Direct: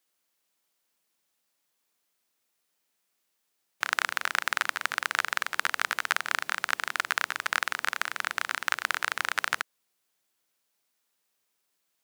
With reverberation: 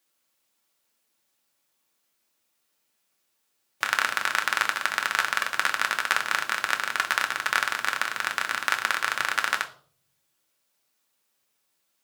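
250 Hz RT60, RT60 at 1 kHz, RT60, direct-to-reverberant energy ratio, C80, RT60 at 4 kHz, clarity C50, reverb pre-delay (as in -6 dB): 0.90 s, 0.45 s, 0.50 s, 3.5 dB, 18.0 dB, 0.40 s, 14.5 dB, 3 ms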